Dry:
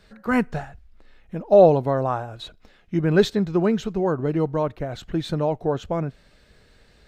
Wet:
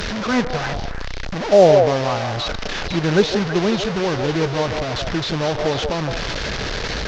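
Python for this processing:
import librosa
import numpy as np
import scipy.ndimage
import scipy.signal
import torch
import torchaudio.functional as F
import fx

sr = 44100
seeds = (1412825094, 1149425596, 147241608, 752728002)

y = fx.delta_mod(x, sr, bps=32000, step_db=-19.0)
y = fx.cheby_harmonics(y, sr, harmonics=(7,), levels_db=(-35,), full_scale_db=-3.5)
y = fx.echo_stepped(y, sr, ms=163, hz=580.0, octaves=1.4, feedback_pct=70, wet_db=-2.5)
y = y * 10.0 ** (1.5 / 20.0)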